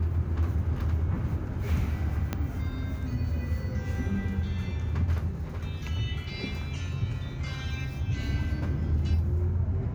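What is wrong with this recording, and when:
0:02.33: click −15 dBFS

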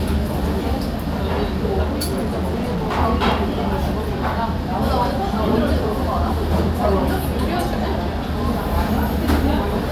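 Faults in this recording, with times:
0:01.82–0:02.99: clipping −18.5 dBFS

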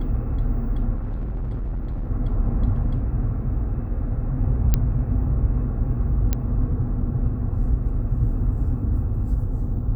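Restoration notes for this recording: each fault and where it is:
0:00.95–0:02.11: clipping −23.5 dBFS
0:04.74: click −6 dBFS
0:06.33: click −8 dBFS

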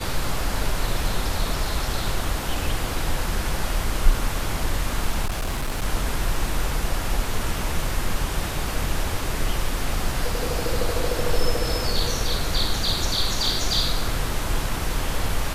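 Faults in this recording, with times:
0:05.25–0:05.85: clipping −21.5 dBFS

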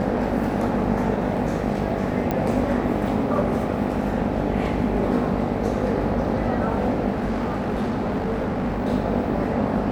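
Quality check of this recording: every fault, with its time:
mains buzz 50 Hz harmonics 17 −28 dBFS
0:02.31: click −11 dBFS
0:07.11–0:08.85: clipping −20.5 dBFS

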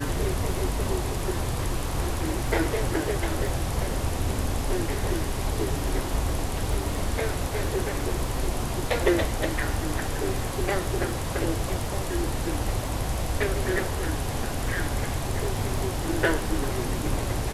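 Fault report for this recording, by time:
surface crackle 12 per second −32 dBFS

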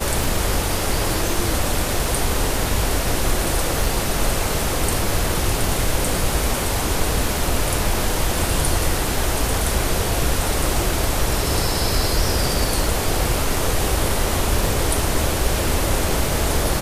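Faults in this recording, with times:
scratch tick 33 1/3 rpm

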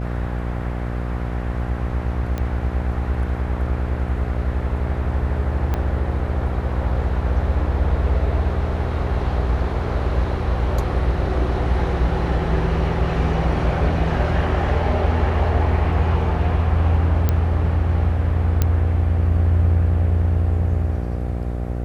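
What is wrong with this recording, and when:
mains buzz 60 Hz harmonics 13 −25 dBFS
0:02.38: click −14 dBFS
0:05.74: click −11 dBFS
0:17.29: click −7 dBFS
0:18.62: click −5 dBFS

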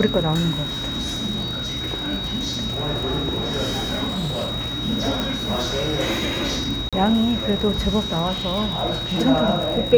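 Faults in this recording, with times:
surface crackle 82 per second −27 dBFS
whistle 3,800 Hz −27 dBFS
0:04.08–0:04.52: clipping −21 dBFS
0:05.20: click −10 dBFS
0:06.89–0:06.93: drop-out 36 ms

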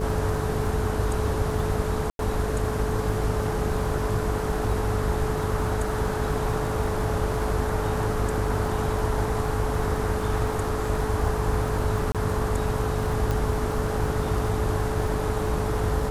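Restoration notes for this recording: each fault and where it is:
mains buzz 50 Hz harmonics 14 −30 dBFS
surface crackle 23 per second −31 dBFS
whistle 430 Hz −30 dBFS
0:02.10–0:02.19: drop-out 92 ms
0:12.12–0:12.15: drop-out 27 ms
0:13.31: click

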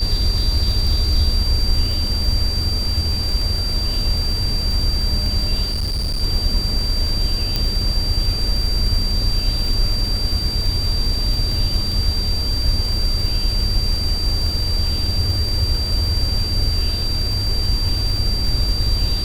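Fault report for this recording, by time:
surface crackle 55 per second −23 dBFS
whistle 4,700 Hz −23 dBFS
0:05.71–0:06.23: clipping −18 dBFS
0:07.56: click −6 dBFS

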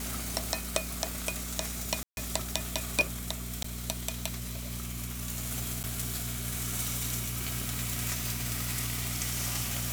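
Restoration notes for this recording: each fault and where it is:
mains hum 60 Hz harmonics 4 −39 dBFS
0:02.03–0:02.17: drop-out 141 ms
0:03.63–0:03.64: drop-out 14 ms
0:05.83–0:05.84: drop-out 9 ms

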